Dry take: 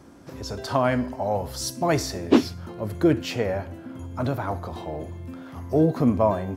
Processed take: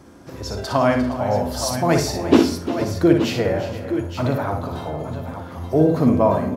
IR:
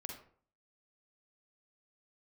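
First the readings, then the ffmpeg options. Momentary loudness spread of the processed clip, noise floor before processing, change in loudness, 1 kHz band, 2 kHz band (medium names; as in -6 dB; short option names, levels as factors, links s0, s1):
13 LU, -43 dBFS, +5.0 dB, +4.5 dB, +4.5 dB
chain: -filter_complex "[0:a]aecho=1:1:59|351|391|467|870|879:0.473|0.224|0.1|0.141|0.2|0.266,asplit=2[s0][s1];[1:a]atrim=start_sample=2205[s2];[s1][s2]afir=irnorm=-1:irlink=0,volume=1.06[s3];[s0][s3]amix=inputs=2:normalize=0,volume=0.891"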